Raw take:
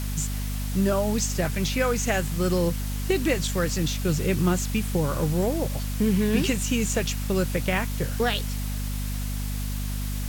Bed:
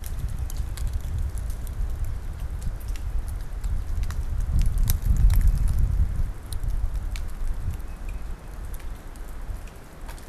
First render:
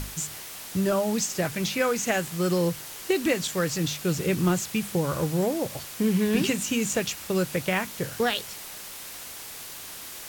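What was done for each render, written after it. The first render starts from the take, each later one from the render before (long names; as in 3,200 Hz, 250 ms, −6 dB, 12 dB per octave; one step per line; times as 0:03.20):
mains-hum notches 50/100/150/200/250 Hz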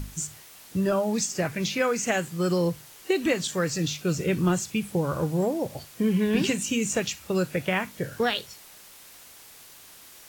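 noise reduction from a noise print 9 dB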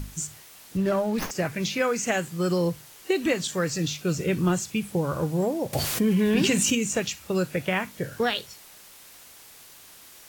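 0:00.77–0:01.31: windowed peak hold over 5 samples
0:05.73–0:06.75: envelope flattener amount 70%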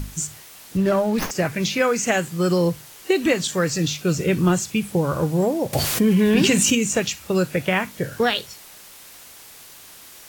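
level +5 dB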